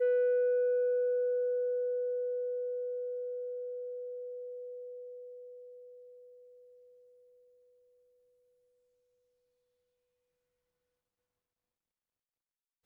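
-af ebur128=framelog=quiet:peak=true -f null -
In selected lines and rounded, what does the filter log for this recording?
Integrated loudness:
  I:         -33.5 LUFS
  Threshold: -45.7 LUFS
Loudness range:
  LRA:        22.8 LU
  Threshold: -58.9 LUFS
  LRA low:   -55.0 LUFS
  LRA high:  -32.2 LUFS
True peak:
  Peak:      -24.8 dBFS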